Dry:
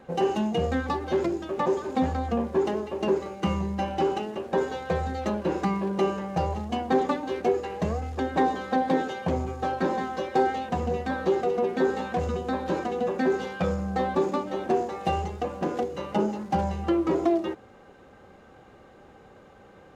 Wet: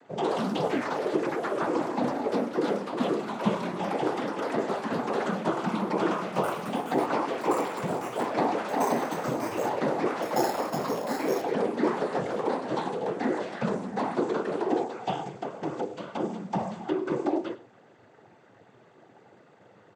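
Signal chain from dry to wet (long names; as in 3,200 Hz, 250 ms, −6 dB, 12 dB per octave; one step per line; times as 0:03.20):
cochlear-implant simulation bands 16
0:00.50–0:01.07: surface crackle 99 per second −43 dBFS
0:10.22–0:11.42: sample-rate reduction 6,000 Hz, jitter 0%
delay with pitch and tempo change per echo 92 ms, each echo +3 semitones, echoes 3
on a send: single-tap delay 100 ms −17.5 dB
on the sum: level −3.5 dB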